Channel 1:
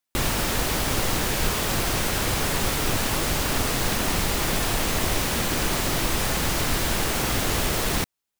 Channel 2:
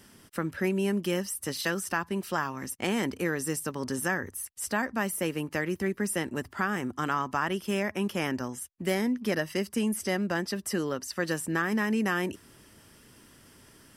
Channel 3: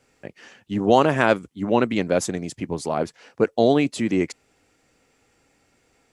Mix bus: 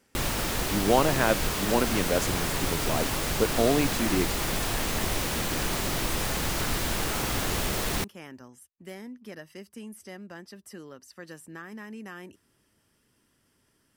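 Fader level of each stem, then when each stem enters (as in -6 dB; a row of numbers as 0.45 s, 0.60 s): -4.5 dB, -14.0 dB, -6.0 dB; 0.00 s, 0.00 s, 0.00 s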